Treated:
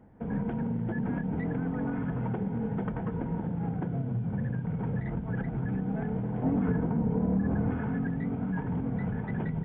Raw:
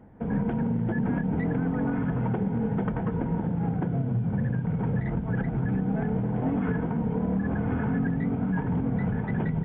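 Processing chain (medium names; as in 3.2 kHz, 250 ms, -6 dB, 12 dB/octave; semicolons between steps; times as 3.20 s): 6.43–7.71 s: tilt shelf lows +4.5 dB, about 1.2 kHz; trim -4.5 dB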